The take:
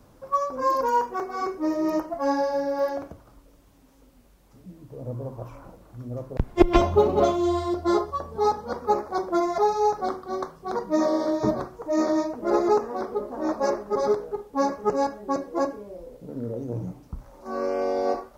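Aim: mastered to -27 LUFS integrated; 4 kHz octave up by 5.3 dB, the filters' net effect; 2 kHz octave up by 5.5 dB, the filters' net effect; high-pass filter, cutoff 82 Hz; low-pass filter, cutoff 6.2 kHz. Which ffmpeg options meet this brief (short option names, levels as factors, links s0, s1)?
-af "highpass=82,lowpass=6200,equalizer=f=2000:t=o:g=6,equalizer=f=4000:t=o:g=6,volume=0.794"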